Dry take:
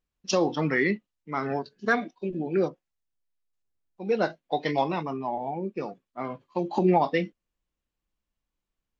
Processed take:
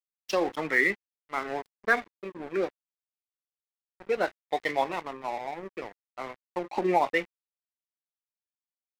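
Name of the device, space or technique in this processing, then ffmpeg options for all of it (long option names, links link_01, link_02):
pocket radio on a weak battery: -af "highpass=360,lowpass=4300,aeval=exprs='sgn(val(0))*max(abs(val(0))-0.0106,0)':channel_layout=same,equalizer=frequency=2000:width_type=o:width=0.48:gain=6"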